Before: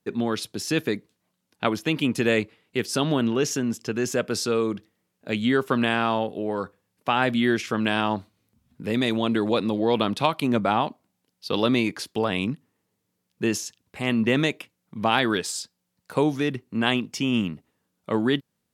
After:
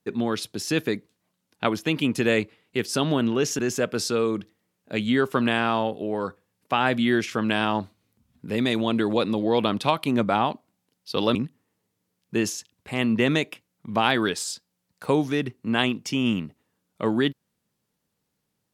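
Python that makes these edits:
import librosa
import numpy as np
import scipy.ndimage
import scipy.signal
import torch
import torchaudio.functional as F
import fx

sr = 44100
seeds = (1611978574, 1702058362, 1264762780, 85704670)

y = fx.edit(x, sr, fx.cut(start_s=3.59, length_s=0.36),
    fx.cut(start_s=11.71, length_s=0.72), tone=tone)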